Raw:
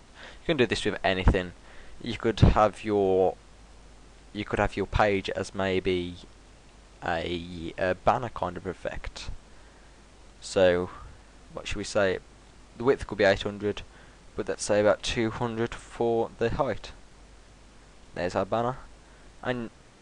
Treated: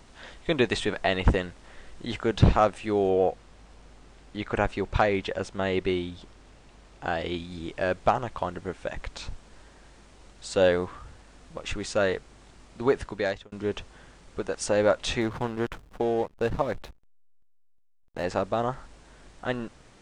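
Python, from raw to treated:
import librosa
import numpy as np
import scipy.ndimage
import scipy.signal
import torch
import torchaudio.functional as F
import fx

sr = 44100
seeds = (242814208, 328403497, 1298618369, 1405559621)

y = fx.high_shelf(x, sr, hz=5700.0, db=-5.5, at=(3.09, 7.37))
y = fx.backlash(y, sr, play_db=-34.5, at=(15.21, 18.24))
y = fx.edit(y, sr, fx.fade_out_span(start_s=12.98, length_s=0.54), tone=tone)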